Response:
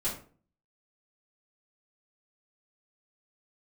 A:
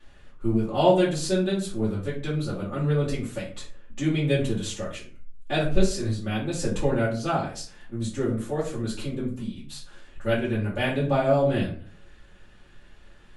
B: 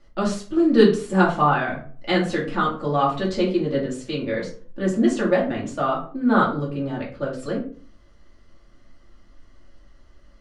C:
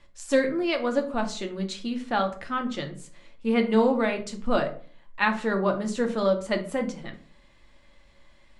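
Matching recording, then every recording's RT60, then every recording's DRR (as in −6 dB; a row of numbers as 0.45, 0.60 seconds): A; 0.45, 0.45, 0.45 seconds; −10.0, −5.0, 4.0 decibels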